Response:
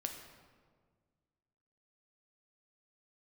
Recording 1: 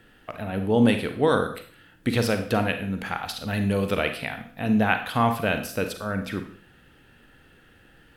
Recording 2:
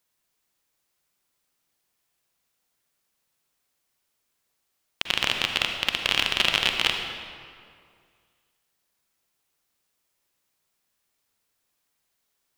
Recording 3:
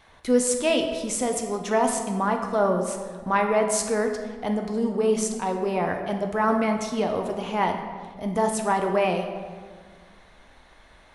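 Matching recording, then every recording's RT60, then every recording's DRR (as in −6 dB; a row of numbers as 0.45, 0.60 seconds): 3; 0.50, 2.2, 1.7 seconds; 7.0, 3.5, 3.5 decibels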